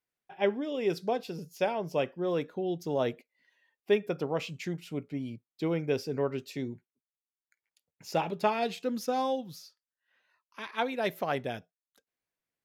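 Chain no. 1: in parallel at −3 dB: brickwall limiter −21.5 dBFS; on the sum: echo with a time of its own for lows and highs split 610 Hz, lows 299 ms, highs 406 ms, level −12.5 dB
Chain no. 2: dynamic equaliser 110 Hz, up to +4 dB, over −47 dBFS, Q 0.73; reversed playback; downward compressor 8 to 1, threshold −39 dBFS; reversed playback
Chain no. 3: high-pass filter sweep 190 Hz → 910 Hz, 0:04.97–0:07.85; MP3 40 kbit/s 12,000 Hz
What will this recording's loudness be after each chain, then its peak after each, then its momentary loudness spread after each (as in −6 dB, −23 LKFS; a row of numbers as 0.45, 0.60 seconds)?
−28.5, −43.5, −30.0 LKFS; −11.5, −28.5, −11.5 dBFS; 17, 5, 12 LU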